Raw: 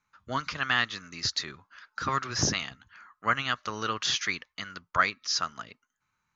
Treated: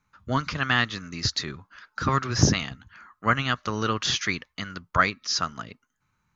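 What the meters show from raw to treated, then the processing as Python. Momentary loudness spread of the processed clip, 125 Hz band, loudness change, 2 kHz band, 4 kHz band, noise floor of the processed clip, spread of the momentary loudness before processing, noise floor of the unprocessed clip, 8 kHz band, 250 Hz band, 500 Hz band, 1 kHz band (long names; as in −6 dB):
14 LU, +11.5 dB, +3.5 dB, +2.5 dB, +2.0 dB, −76 dBFS, 14 LU, −80 dBFS, can't be measured, +9.5 dB, +6.5 dB, +3.0 dB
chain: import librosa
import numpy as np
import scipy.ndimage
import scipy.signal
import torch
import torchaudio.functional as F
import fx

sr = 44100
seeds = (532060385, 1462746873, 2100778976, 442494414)

y = fx.low_shelf(x, sr, hz=410.0, db=10.5)
y = y * 10.0 ** (2.0 / 20.0)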